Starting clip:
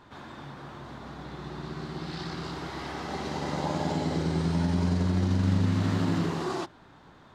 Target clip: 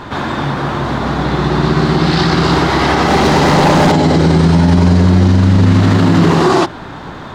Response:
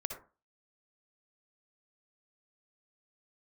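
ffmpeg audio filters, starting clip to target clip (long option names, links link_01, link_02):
-filter_complex "[0:a]highshelf=frequency=5200:gain=-5,asettb=1/sr,asplit=3[link_01][link_02][link_03];[link_01]atrim=end=3.064[link_04];[link_02]atrim=start=3.06:end=3.92,asetpts=PTS-STARTPTS,afade=type=in:duration=0.004:curve=qsin,afade=type=out:start_time=0.856:duration=0.004:curve=qsin,volume=32dB,asoftclip=hard,volume=-32dB[link_05];[link_03]atrim=start=3.916[link_06];[link_04][link_05]acrossfade=duration=0.004:curve1=hsin:curve2=qsin[link_07];[link_07][link_06]acrossfade=duration=0.004:curve1=qsin:curve2=hsin,alimiter=level_in=26.5dB:limit=-1dB:release=50:level=0:latency=1,volume=-1dB"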